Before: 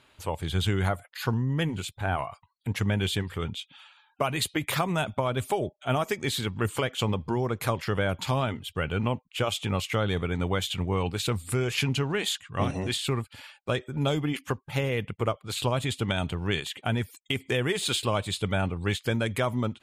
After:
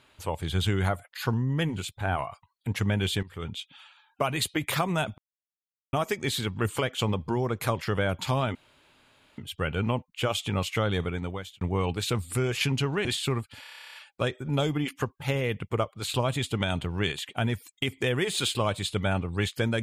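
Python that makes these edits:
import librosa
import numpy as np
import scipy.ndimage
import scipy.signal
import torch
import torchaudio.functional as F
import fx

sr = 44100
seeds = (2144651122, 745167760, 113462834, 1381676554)

y = fx.edit(x, sr, fx.fade_in_from(start_s=3.23, length_s=0.37, floor_db=-14.0),
    fx.silence(start_s=5.18, length_s=0.75),
    fx.insert_room_tone(at_s=8.55, length_s=0.83),
    fx.fade_out_span(start_s=10.16, length_s=0.62),
    fx.cut(start_s=12.22, length_s=0.64),
    fx.stutter(start_s=13.42, slice_s=0.03, count=12), tone=tone)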